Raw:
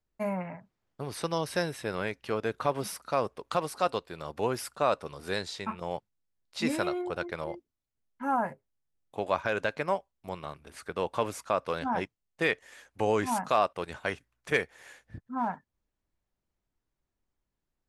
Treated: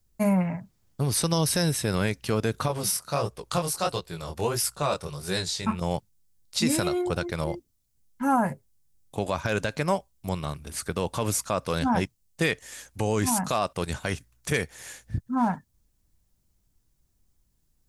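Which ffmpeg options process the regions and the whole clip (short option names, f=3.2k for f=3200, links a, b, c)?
-filter_complex "[0:a]asettb=1/sr,asplit=3[a][b][c];[a]atrim=end=2.684[d];[b]atrim=start=2.68:end=5.65,asetpts=PTS-STARTPTS,afade=t=in:d=0.004:c=qsin,afade=t=out:st=2.966:d=0.004:c=qsin,equalizer=f=250:w=5.8:g=-14.5,flanger=delay=16:depth=8:speed=1.5[e];[c]atrim=start=5.646[f];[d][e]acrossfade=d=0.004:c1=hsin:c2=qsin[g];[g][f]acrossfade=d=0.004:c1=qsin:c2=hsin,bass=f=250:g=12,treble=f=4k:g=14,alimiter=limit=-18dB:level=0:latency=1:release=67,volume=4dB"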